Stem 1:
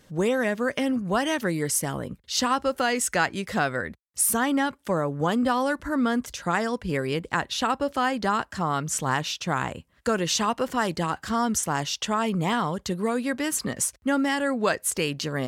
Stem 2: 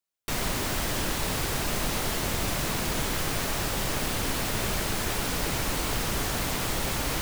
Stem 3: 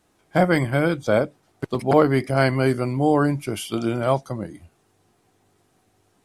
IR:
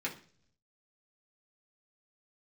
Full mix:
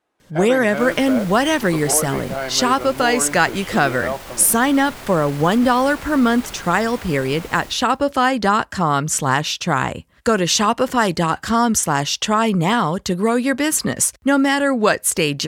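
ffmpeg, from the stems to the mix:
-filter_complex "[0:a]adelay=200,volume=1.33[s0];[1:a]alimiter=limit=0.0631:level=0:latency=1:release=44,adelay=400,volume=0.531,asplit=2[s1][s2];[s2]volume=0.501[s3];[2:a]acontrast=72,volume=0.237[s4];[s1][s4]amix=inputs=2:normalize=0,bass=f=250:g=-15,treble=f=4000:g=-11,alimiter=limit=0.106:level=0:latency=1:release=247,volume=1[s5];[s3]aecho=0:1:117|234|351|468|585|702:1|0.42|0.176|0.0741|0.0311|0.0131[s6];[s0][s5][s6]amix=inputs=3:normalize=0,dynaudnorm=f=230:g=3:m=2.11"

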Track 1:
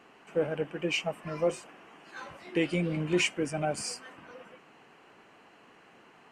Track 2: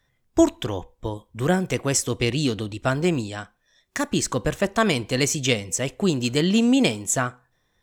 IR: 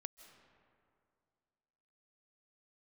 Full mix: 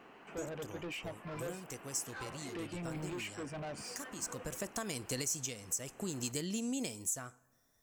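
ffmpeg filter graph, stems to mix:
-filter_complex "[0:a]highshelf=f=4300:g=-10,alimiter=level_in=1.19:limit=0.0631:level=0:latency=1:release=411,volume=0.841,asoftclip=type=tanh:threshold=0.01,volume=1.12[s0];[1:a]acompressor=threshold=0.0562:ratio=5,aexciter=amount=2.7:drive=9.1:freq=5000,volume=0.282,afade=t=in:st=4.25:d=0.53:silence=0.375837,asplit=2[s1][s2];[s2]volume=0.126[s3];[2:a]atrim=start_sample=2205[s4];[s3][s4]afir=irnorm=-1:irlink=0[s5];[s0][s1][s5]amix=inputs=3:normalize=0,alimiter=level_in=1.06:limit=0.0631:level=0:latency=1:release=424,volume=0.944"

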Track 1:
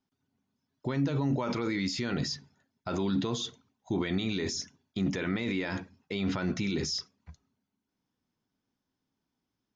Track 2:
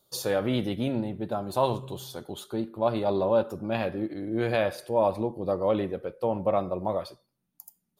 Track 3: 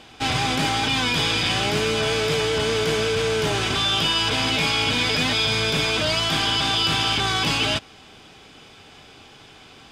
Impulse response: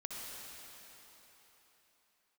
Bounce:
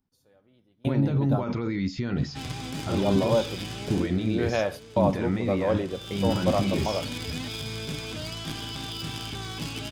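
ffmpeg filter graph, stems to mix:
-filter_complex "[0:a]aemphasis=mode=reproduction:type=bsi,volume=0.841,asplit=2[s0][s1];[1:a]volume=0.944,asplit=3[s2][s3][s4];[s2]atrim=end=1.44,asetpts=PTS-STARTPTS,afade=t=out:st=1.436:d=0.004:c=hsin[s5];[s3]atrim=start=1.44:end=2.89,asetpts=PTS-STARTPTS,volume=0[s6];[s4]atrim=start=2.89,asetpts=PTS-STARTPTS,afade=t=in:d=0.004:c=hsin[s7];[s5][s6][s7]concat=n=3:v=0:a=1[s8];[2:a]aeval=exprs='0.282*(cos(1*acos(clip(val(0)/0.282,-1,1)))-cos(1*PI/2))+0.0891*(cos(3*acos(clip(val(0)/0.282,-1,1)))-cos(3*PI/2))+0.0316*(cos(5*acos(clip(val(0)/0.282,-1,1)))-cos(5*PI/2))':c=same,acrossover=split=370[s9][s10];[s10]acompressor=threshold=0.002:ratio=1.5[s11];[s9][s11]amix=inputs=2:normalize=0,adynamicequalizer=threshold=0.00282:dfrequency=4100:dqfactor=0.7:tfrequency=4100:tqfactor=0.7:attack=5:release=100:ratio=0.375:range=2.5:mode=boostabove:tftype=highshelf,adelay=2150,volume=3.35,afade=t=out:st=3.93:d=0.2:silence=0.251189,afade=t=in:st=5.82:d=0.58:silence=0.223872[s12];[s1]apad=whole_len=352541[s13];[s8][s13]sidechaingate=range=0.0178:threshold=0.00178:ratio=16:detection=peak[s14];[s0][s14][s12]amix=inputs=3:normalize=0"

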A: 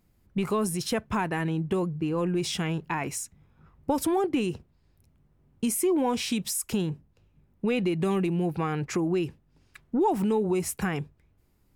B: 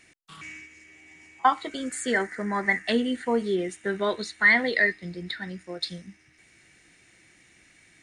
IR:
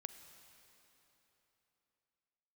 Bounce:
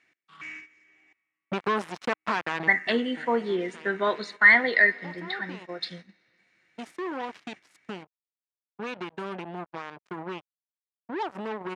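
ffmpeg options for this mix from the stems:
-filter_complex "[0:a]acrusher=bits=3:mix=0:aa=0.5,adelay=1150,volume=0.596,afade=t=out:st=5.19:d=0.76:silence=0.375837[s0];[1:a]volume=0.501,asplit=3[s1][s2][s3];[s1]atrim=end=1.13,asetpts=PTS-STARTPTS,afade=t=out:st=1.126:d=0.004:c=hsin[s4];[s2]atrim=start=1.13:end=2.67,asetpts=PTS-STARTPTS,volume=0[s5];[s3]atrim=start=2.67,asetpts=PTS-STARTPTS,afade=t=in:d=0.004:c=hsin[s6];[s4][s5][s6]concat=n=3:v=0:a=1,asplit=3[s7][s8][s9];[s8]volume=0.562[s10];[s9]apad=whole_len=569260[s11];[s0][s11]sidechaincompress=threshold=0.00631:ratio=8:attack=16:release=1170[s12];[2:a]atrim=start_sample=2205[s13];[s10][s13]afir=irnorm=-1:irlink=0[s14];[s12][s7][s14]amix=inputs=3:normalize=0,equalizer=f=1300:w=0.57:g=8,agate=range=0.282:threshold=0.00794:ratio=16:detection=peak,highpass=130,lowpass=5100"

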